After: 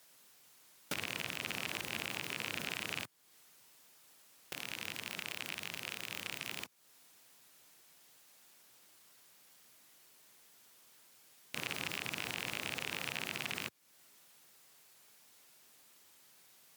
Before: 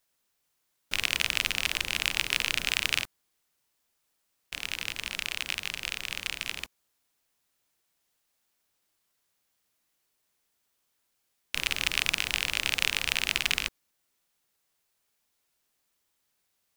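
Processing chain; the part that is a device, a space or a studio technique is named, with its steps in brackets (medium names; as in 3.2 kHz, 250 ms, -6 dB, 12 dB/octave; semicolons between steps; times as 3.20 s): podcast mastering chain (high-pass 110 Hz 24 dB/octave; de-esser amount 70%; compression 3:1, threshold -51 dBFS, peak gain reduction 15 dB; peak limiter -34 dBFS, peak gain reduction 8.5 dB; trim +14 dB; MP3 96 kbps 48 kHz)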